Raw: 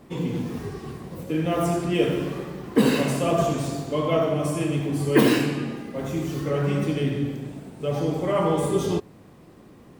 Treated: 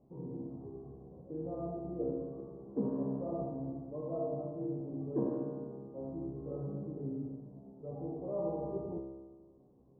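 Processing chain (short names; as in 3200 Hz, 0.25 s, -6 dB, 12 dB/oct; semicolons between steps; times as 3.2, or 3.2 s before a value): inverse Chebyshev low-pass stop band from 2100 Hz, stop band 50 dB; resonator 67 Hz, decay 1.5 s, harmonics all, mix 90%; gain -1 dB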